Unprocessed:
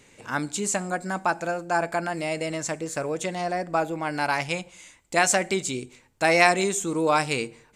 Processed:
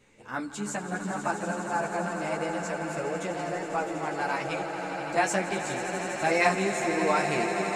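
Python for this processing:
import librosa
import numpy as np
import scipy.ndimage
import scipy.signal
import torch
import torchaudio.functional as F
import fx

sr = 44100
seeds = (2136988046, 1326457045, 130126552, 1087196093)

y = fx.high_shelf(x, sr, hz=3100.0, db=-7.5)
y = fx.echo_swell(y, sr, ms=82, loudest=8, wet_db=-12.0)
y = fx.ensemble(y, sr)
y = F.gain(torch.from_numpy(y), -1.5).numpy()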